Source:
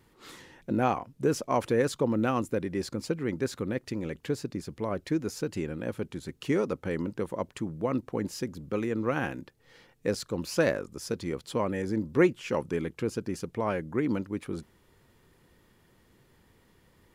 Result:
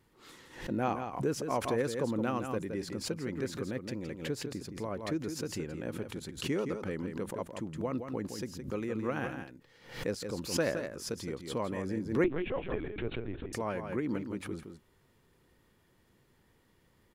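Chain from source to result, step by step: echo 0.167 s -7.5 dB; 12.24–13.53 LPC vocoder at 8 kHz pitch kept; backwards sustainer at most 110 dB/s; gain -6 dB

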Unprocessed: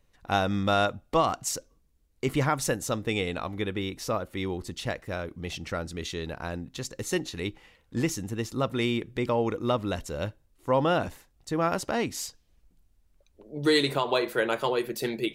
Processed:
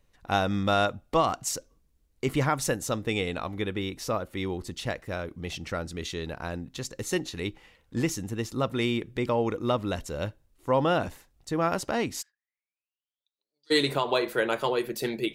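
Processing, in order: 12.21–13.7 band-pass 1600 Hz -> 5000 Hz, Q 20

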